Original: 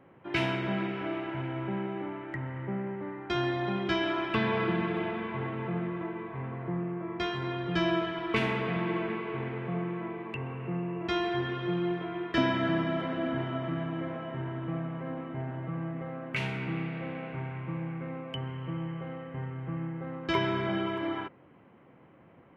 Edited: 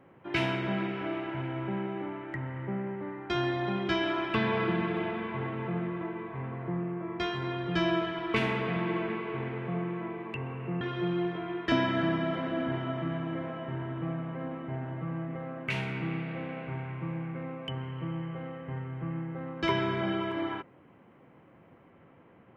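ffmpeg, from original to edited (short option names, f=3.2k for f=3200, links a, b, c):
-filter_complex "[0:a]asplit=2[a][b];[a]atrim=end=10.812[c];[b]atrim=start=11.468[d];[c][d]acrossfade=d=0.004:c1=hsin:c2=hsin"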